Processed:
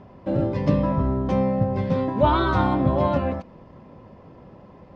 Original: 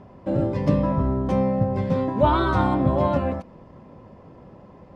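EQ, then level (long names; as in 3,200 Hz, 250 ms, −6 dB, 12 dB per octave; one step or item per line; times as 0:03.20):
high-frequency loss of the air 150 metres
high-shelf EQ 3,500 Hz +11 dB
0.0 dB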